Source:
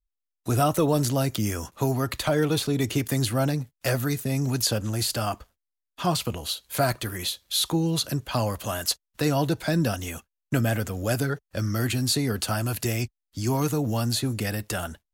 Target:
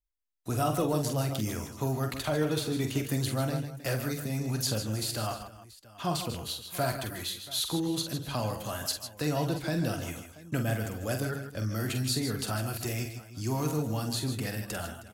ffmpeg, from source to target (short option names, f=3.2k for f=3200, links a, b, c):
-af "aecho=1:1:46|141|156|314|682:0.447|0.237|0.282|0.133|0.106,volume=-7dB"